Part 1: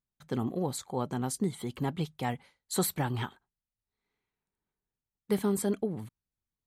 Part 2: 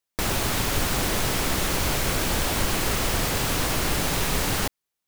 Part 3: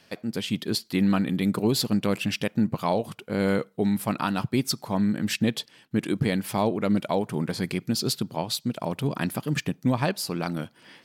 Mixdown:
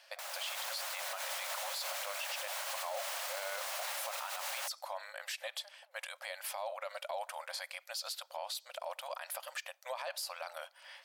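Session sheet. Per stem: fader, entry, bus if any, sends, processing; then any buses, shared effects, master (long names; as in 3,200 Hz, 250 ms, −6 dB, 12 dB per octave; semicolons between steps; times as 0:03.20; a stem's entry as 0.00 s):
−13.5 dB, 0.00 s, no send, parametric band 2,200 Hz +12 dB 0.83 octaves; downward compressor 2.5 to 1, threshold −36 dBFS, peak gain reduction 9.5 dB
−17.5 dB, 0.00 s, no send, automatic gain control gain up to 9.5 dB
−2.0 dB, 0.00 s, no send, no processing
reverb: not used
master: linear-phase brick-wall high-pass 520 Hz; brickwall limiter −29.5 dBFS, peak gain reduction 15.5 dB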